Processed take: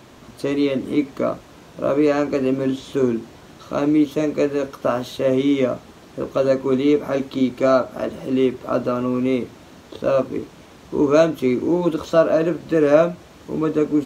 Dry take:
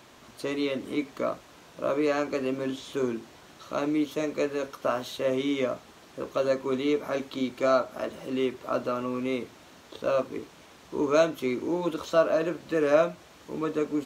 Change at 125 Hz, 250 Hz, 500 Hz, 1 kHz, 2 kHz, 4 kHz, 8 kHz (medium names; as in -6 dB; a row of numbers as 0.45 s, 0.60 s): +12.0 dB, +10.5 dB, +8.0 dB, +5.5 dB, +4.0 dB, +3.5 dB, no reading